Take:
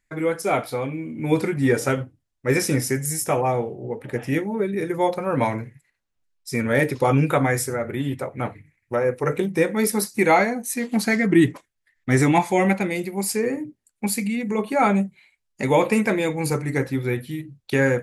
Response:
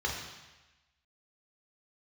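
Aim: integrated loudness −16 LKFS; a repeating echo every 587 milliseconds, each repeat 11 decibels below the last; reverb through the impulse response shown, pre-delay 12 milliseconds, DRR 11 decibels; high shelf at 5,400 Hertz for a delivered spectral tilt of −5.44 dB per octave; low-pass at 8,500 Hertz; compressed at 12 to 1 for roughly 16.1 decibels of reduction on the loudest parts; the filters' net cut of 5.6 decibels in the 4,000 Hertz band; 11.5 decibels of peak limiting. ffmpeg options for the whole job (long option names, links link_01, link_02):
-filter_complex "[0:a]lowpass=8500,equalizer=frequency=4000:width_type=o:gain=-4,highshelf=frequency=5400:gain=-6.5,acompressor=threshold=-28dB:ratio=12,alimiter=level_in=3dB:limit=-24dB:level=0:latency=1,volume=-3dB,aecho=1:1:587|1174|1761:0.282|0.0789|0.0221,asplit=2[link_01][link_02];[1:a]atrim=start_sample=2205,adelay=12[link_03];[link_02][link_03]afir=irnorm=-1:irlink=0,volume=-18.5dB[link_04];[link_01][link_04]amix=inputs=2:normalize=0,volume=20dB"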